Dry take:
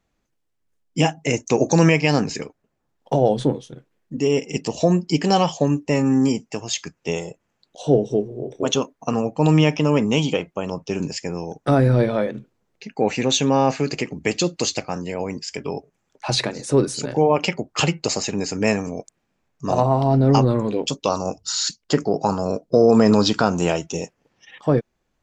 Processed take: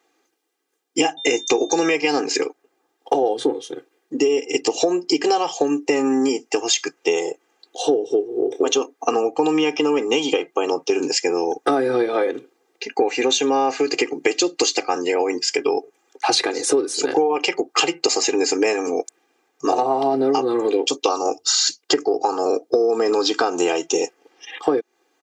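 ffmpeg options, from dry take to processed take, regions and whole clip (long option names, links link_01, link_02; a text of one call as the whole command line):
ffmpeg -i in.wav -filter_complex "[0:a]asettb=1/sr,asplit=3[link_01][link_02][link_03];[link_01]atrim=end=1.174[link_04];[link_02]atrim=start=1.17:end=1.95,asetpts=PTS-STARTPTS,afade=type=in:duration=0.004:curve=qsin,afade=type=out:start_time=0.776:duration=0.004:curve=qsin,aeval=exprs='val(0)+0.00891*sin(2*PI*3600*n/s)':channel_layout=same,asplit=2[link_05][link_06];[link_06]adelay=17,volume=-11.5dB[link_07];[link_05][link_07]amix=inputs=2:normalize=0,atrim=end_sample=34398[link_08];[link_03]atrim=start=1.946[link_09];[link_04][link_08]acrossfade=duration=0.004:curve1=hsin:curve2=qsin[link_10];[link_10][link_09]acrossfade=duration=0.004:curve1=qsin:curve2=hsin,highpass=frequency=260:width=0.5412,highpass=frequency=260:width=1.3066,aecho=1:1:2.5:0.93,acompressor=threshold=-23dB:ratio=12,volume=8dB" out.wav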